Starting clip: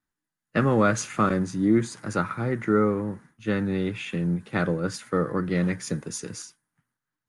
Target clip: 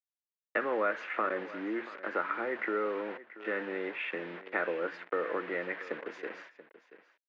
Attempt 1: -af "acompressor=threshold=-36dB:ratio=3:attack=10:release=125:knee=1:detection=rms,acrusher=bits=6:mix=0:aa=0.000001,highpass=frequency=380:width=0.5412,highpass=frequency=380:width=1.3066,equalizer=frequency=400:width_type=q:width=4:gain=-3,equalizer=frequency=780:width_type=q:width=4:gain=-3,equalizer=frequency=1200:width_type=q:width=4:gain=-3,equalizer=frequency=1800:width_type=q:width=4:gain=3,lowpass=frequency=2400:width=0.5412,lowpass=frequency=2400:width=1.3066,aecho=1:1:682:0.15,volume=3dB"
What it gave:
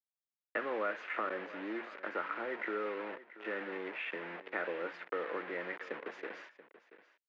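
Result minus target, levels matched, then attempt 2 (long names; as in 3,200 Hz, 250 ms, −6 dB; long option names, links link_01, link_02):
downward compressor: peak gain reduction +5.5 dB
-af "acompressor=threshold=-28dB:ratio=3:attack=10:release=125:knee=1:detection=rms,acrusher=bits=6:mix=0:aa=0.000001,highpass=frequency=380:width=0.5412,highpass=frequency=380:width=1.3066,equalizer=frequency=400:width_type=q:width=4:gain=-3,equalizer=frequency=780:width_type=q:width=4:gain=-3,equalizer=frequency=1200:width_type=q:width=4:gain=-3,equalizer=frequency=1800:width_type=q:width=4:gain=3,lowpass=frequency=2400:width=0.5412,lowpass=frequency=2400:width=1.3066,aecho=1:1:682:0.15,volume=3dB"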